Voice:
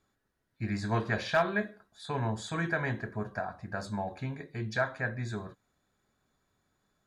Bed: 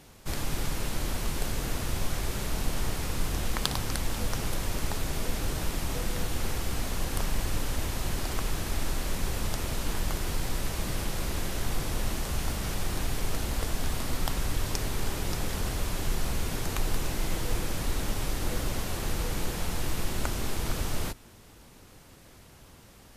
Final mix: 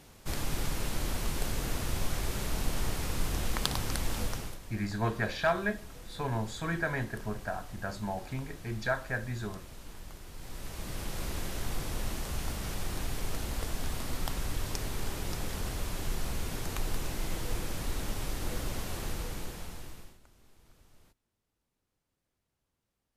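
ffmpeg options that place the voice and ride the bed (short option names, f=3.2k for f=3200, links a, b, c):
-filter_complex "[0:a]adelay=4100,volume=-1dB[a];[1:a]volume=10dB,afade=t=out:st=4.2:d=0.39:silence=0.188365,afade=t=in:st=10.33:d=0.9:silence=0.251189,afade=t=out:st=18.99:d=1.2:silence=0.0473151[b];[a][b]amix=inputs=2:normalize=0"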